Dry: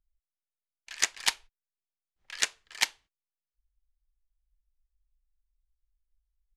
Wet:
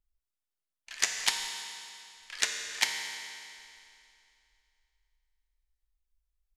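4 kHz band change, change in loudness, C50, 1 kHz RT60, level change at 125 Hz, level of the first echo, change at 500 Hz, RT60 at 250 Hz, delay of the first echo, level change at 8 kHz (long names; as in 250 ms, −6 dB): +0.5 dB, −1.5 dB, 4.0 dB, 2.6 s, can't be measured, no echo audible, +0.5 dB, 2.6 s, no echo audible, 0.0 dB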